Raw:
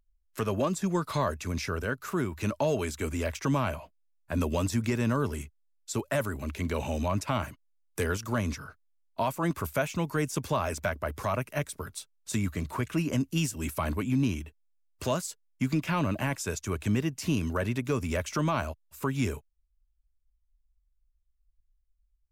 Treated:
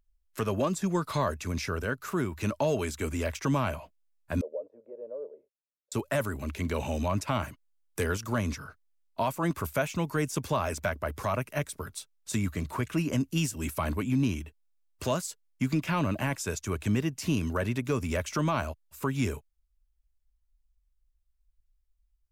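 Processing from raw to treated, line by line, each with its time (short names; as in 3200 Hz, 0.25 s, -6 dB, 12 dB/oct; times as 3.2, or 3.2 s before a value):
4.41–5.92 Butterworth band-pass 520 Hz, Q 3.7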